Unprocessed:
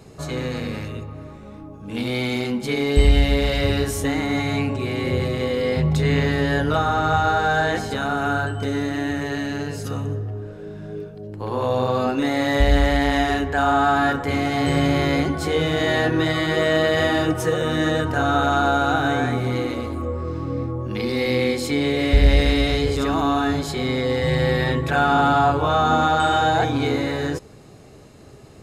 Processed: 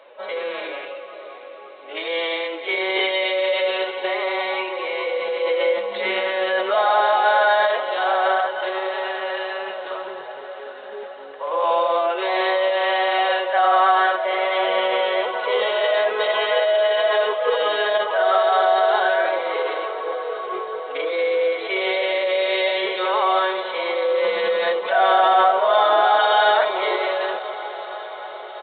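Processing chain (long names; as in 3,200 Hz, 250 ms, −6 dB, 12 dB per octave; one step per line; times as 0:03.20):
high-pass filter 480 Hz 24 dB per octave
dynamic equaliser 1,900 Hz, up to −7 dB, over −44 dBFS, Q 6.6
in parallel at +2 dB: brickwall limiter −16 dBFS, peak gain reduction 8 dB
on the sum: bit reduction 11 bits
repeating echo 181 ms, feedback 31%, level −14 dB
phase-vocoder pitch shift with formants kept +5 semitones
on a send: feedback delay with all-pass diffusion 658 ms, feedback 66%, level −14 dB
on the sum: downsampling to 8,000 Hz
level −1.5 dB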